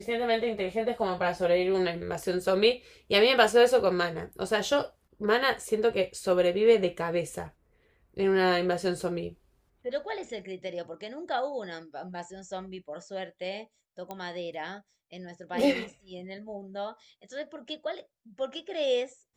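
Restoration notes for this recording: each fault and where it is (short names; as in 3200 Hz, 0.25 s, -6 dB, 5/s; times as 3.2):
14.11 pop -23 dBFS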